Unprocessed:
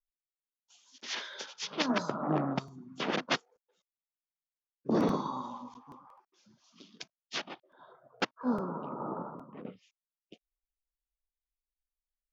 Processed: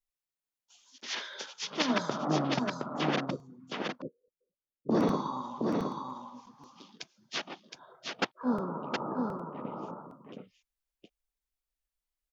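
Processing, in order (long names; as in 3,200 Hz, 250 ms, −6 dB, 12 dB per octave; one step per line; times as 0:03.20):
0:03.30–0:04.89: Chebyshev low-pass filter 580 Hz, order 8
on a send: single-tap delay 717 ms −4 dB
on the sum: level +1 dB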